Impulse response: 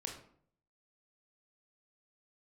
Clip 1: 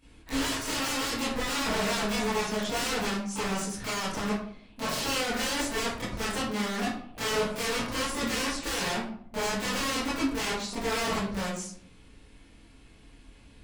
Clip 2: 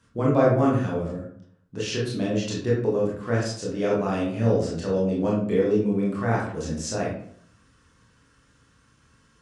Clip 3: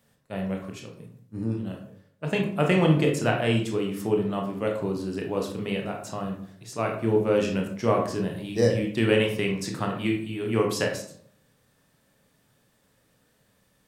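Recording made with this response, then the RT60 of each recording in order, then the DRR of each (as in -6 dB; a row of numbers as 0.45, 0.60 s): 3; 0.60, 0.60, 0.60 s; -12.5, -5.5, 1.0 dB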